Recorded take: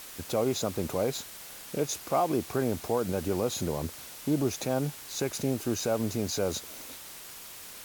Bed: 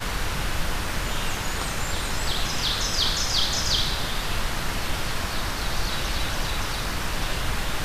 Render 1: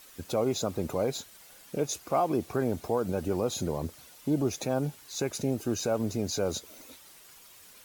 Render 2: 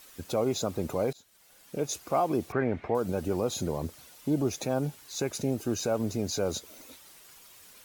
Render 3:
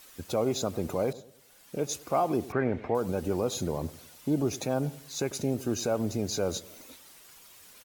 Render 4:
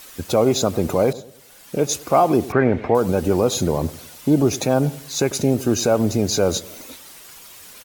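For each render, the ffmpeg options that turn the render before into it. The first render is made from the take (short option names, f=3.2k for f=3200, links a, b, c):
-af "afftdn=nr=10:nf=-45"
-filter_complex "[0:a]asettb=1/sr,asplit=3[a][b][c];[a]atrim=end=2.524[d];[b]atrim=start=2.52:end=2.95,asetpts=PTS-STARTPTS,afade=t=in:d=0.004:c=qsin,afade=t=out:st=0.426:d=0.004:c=qsin,lowpass=f=2.1k:t=q:w=3.5[e];[c]atrim=start=2.946[f];[d][e]acrossfade=d=0.004:c1=hsin:c2=qsin[g];[g][f]acrossfade=d=0.004:c1=qsin:c2=hsin,asplit=2[h][i];[h]atrim=end=1.13,asetpts=PTS-STARTPTS,afade=t=out:st=1.126:d=0.004:c=hsin:silence=0.0749894[j];[i]atrim=start=1.13,asetpts=PTS-STARTPTS,afade=t=in:d=0.81:silence=0.0749894[k];[j][k]concat=n=2:v=0:a=1"
-filter_complex "[0:a]asplit=2[a][b];[b]adelay=99,lowpass=f=1.2k:p=1,volume=-17dB,asplit=2[c][d];[d]adelay=99,lowpass=f=1.2k:p=1,volume=0.42,asplit=2[e][f];[f]adelay=99,lowpass=f=1.2k:p=1,volume=0.42,asplit=2[g][h];[h]adelay=99,lowpass=f=1.2k:p=1,volume=0.42[i];[a][c][e][g][i]amix=inputs=5:normalize=0"
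-af "volume=11dB"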